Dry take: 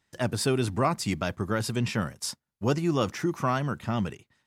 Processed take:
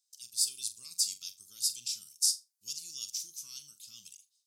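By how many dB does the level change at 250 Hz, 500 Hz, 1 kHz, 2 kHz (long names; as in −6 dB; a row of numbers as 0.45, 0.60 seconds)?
below −40 dB, below −40 dB, below −40 dB, −26.5 dB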